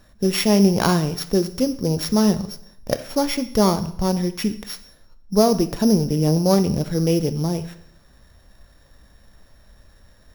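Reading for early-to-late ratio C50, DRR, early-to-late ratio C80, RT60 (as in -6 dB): 14.0 dB, 10.5 dB, 16.5 dB, 0.70 s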